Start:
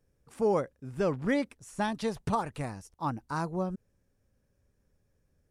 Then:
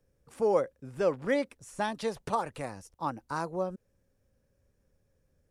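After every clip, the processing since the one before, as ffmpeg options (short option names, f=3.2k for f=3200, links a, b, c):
-filter_complex "[0:a]equalizer=f=530:t=o:w=0.24:g=6,acrossover=split=270|4300[a][b][c];[a]acompressor=threshold=-44dB:ratio=6[d];[d][b][c]amix=inputs=3:normalize=0"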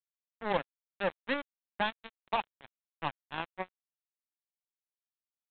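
-af "aecho=1:1:1.2:0.55,aresample=8000,acrusher=bits=3:mix=0:aa=0.5,aresample=44100,volume=-3dB"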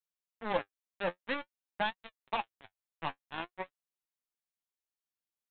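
-af "flanger=delay=5.2:depth=7.2:regen=42:speed=0.51:shape=triangular,volume=2dB"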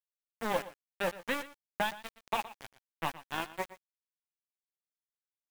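-af "acompressor=threshold=-39dB:ratio=2,acrusher=bits=7:mix=0:aa=0.000001,aecho=1:1:118:0.15,volume=7dB"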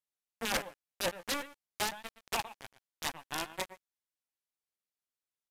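-af "aeval=exprs='(mod(14.1*val(0)+1,2)-1)/14.1':c=same,aresample=32000,aresample=44100"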